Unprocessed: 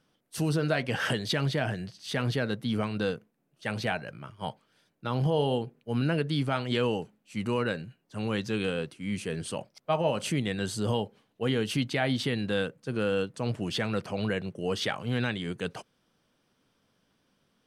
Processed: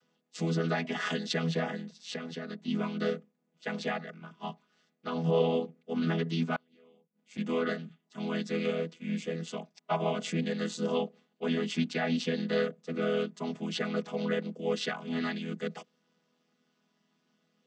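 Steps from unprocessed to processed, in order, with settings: vocoder on a held chord major triad, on E3; 1.80–2.68 s: compression 4:1, threshold -36 dBFS, peak gain reduction 9 dB; 6.56–7.38 s: inverted gate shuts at -30 dBFS, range -33 dB; tilt EQ +3 dB/octave; trim +4 dB

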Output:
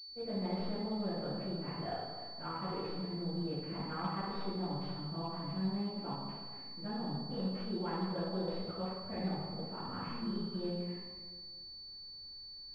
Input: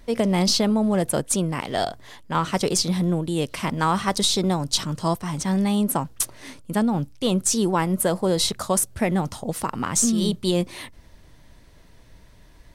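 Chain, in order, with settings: in parallel at -2 dB: level held to a coarse grid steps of 15 dB; on the sum: reverberation RT60 1.7 s, pre-delay 76 ms; class-D stage that switches slowly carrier 4.5 kHz; trim -4.5 dB

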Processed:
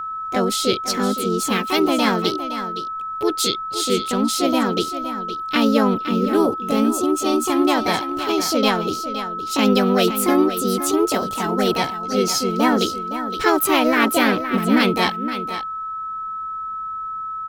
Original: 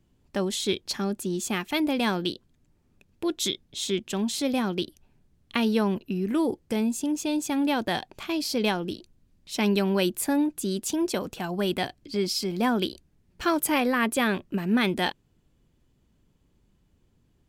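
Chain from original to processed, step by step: harmony voices +4 st -1 dB; delay 515 ms -11 dB; whistle 1.3 kHz -30 dBFS; trim +4.5 dB

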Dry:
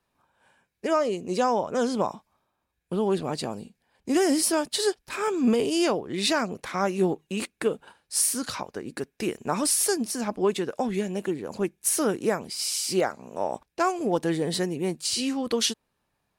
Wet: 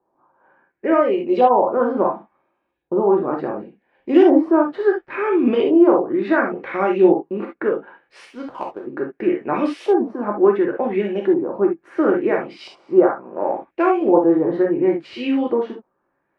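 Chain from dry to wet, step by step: LFO low-pass saw up 0.71 Hz 830–3300 Hz; tone controls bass -8 dB, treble -14 dB; 8.25–8.87 s: power-law waveshaper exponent 1.4; peaking EQ 330 Hz +12.5 dB 1.3 oct; gated-style reverb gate 90 ms flat, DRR 0 dB; trim -1.5 dB

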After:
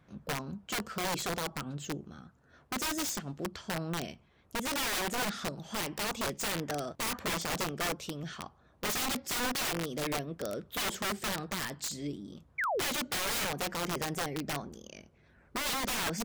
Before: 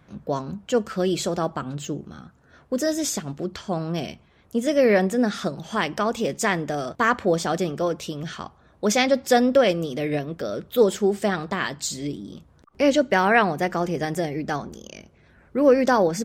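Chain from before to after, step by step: painted sound fall, 12.58–12.86 s, 210–2400 Hz -23 dBFS; integer overflow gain 19.5 dB; trim -8 dB

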